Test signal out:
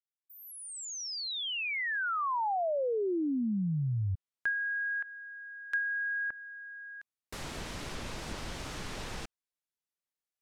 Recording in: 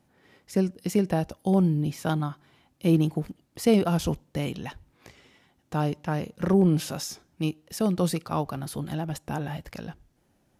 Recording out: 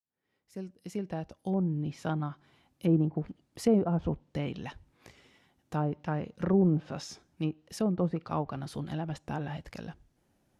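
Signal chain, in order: fade-in on the opening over 2.47 s; low-pass that closes with the level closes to 970 Hz, closed at -20.5 dBFS; trim -4 dB

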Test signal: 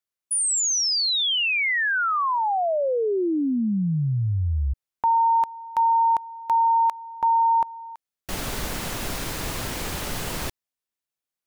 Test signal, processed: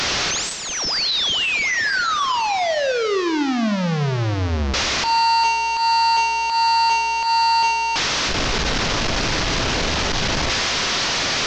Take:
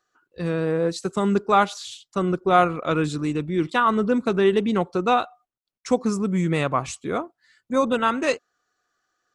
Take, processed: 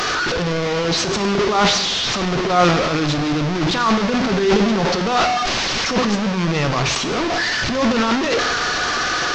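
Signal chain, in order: one-bit delta coder 32 kbps, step -16.5 dBFS; transient shaper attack -12 dB, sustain +9 dB; gated-style reverb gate 340 ms falling, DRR 8.5 dB; trim +2 dB

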